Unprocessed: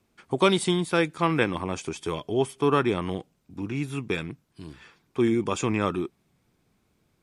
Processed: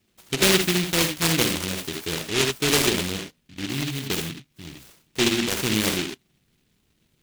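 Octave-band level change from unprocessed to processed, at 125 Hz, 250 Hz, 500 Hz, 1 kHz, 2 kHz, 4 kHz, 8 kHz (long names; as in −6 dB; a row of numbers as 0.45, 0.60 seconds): +1.5, +0.5, −1.5, −3.5, +6.0, +11.0, +14.0 decibels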